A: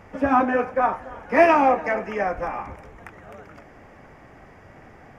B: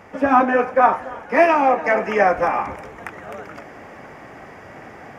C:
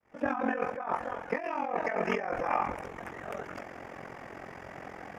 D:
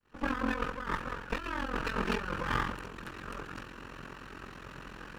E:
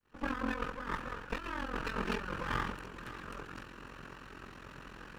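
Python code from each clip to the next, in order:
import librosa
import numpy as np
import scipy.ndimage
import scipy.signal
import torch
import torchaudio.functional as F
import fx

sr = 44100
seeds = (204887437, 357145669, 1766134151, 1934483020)

y1 = fx.highpass(x, sr, hz=220.0, slope=6)
y1 = fx.rider(y1, sr, range_db=5, speed_s=0.5)
y1 = y1 * 10.0 ** (4.5 / 20.0)
y2 = fx.fade_in_head(y1, sr, length_s=0.54)
y2 = fx.over_compress(y2, sr, threshold_db=-22.0, ratio=-1.0)
y2 = y2 * np.sin(2.0 * np.pi * 22.0 * np.arange(len(y2)) / sr)
y2 = y2 * 10.0 ** (-6.5 / 20.0)
y3 = fx.lower_of_two(y2, sr, delay_ms=0.7)
y4 = y3 + 10.0 ** (-15.0 / 20.0) * np.pad(y3, (int(551 * sr / 1000.0), 0))[:len(y3)]
y4 = y4 * 10.0 ** (-3.5 / 20.0)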